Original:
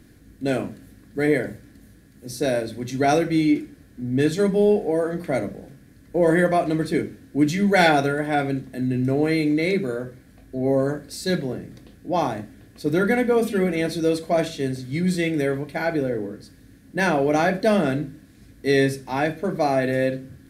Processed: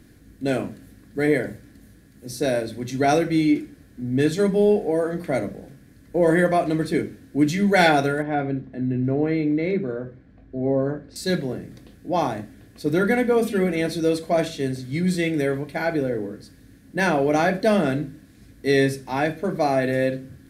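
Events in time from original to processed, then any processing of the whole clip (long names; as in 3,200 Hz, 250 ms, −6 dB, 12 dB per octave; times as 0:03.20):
0:08.22–0:11.16: head-to-tape spacing loss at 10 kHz 31 dB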